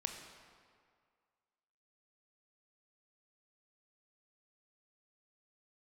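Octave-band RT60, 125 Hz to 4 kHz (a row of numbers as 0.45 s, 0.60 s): 1.8 s, 1.8 s, 2.0 s, 2.1 s, 1.8 s, 1.4 s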